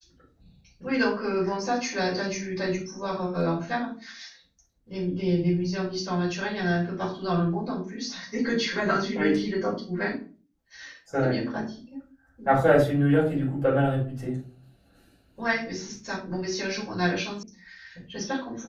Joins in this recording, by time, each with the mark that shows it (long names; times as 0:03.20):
0:17.43: cut off before it has died away